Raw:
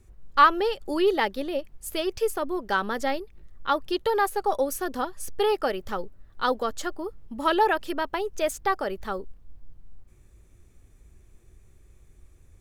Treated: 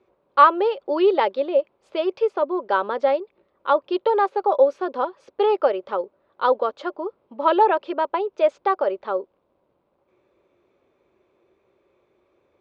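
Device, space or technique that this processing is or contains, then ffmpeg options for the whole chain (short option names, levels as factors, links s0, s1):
phone earpiece: -filter_complex "[0:a]highpass=370,equalizer=f=370:t=q:w=4:g=5,equalizer=f=560:t=q:w=4:g=10,equalizer=f=1000:t=q:w=4:g=6,equalizer=f=1800:t=q:w=4:g=-8,equalizer=f=3000:t=q:w=4:g=-4,lowpass=f=3500:w=0.5412,lowpass=f=3500:w=1.3066,asettb=1/sr,asplit=3[s0][s1][s2];[s0]atrim=end=0.904[s3];[s1]atrim=start=0.9:end=1.46,asetpts=PTS-STARTPTS,afade=t=in:d=0.004:c=qsin,afade=t=out:st=0.556:d=0.004:c=qsin,highshelf=f=3900:g=6[s4];[s2]atrim=start=1.456[s5];[s3][s4]acrossfade=d=0.004:c1=hsin:c2=qsin[s6];[s6][s5]acrossfade=d=0.004:c1=qsin:c2=hsin,volume=1.26"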